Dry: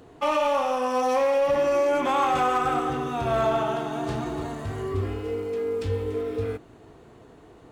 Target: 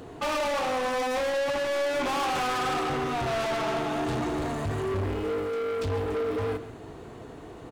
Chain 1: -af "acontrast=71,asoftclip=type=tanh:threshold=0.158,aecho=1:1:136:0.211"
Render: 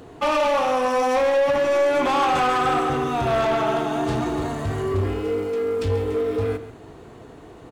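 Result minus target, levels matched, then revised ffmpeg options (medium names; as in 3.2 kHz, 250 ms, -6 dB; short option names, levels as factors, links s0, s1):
saturation: distortion -8 dB
-af "acontrast=71,asoftclip=type=tanh:threshold=0.0473,aecho=1:1:136:0.211"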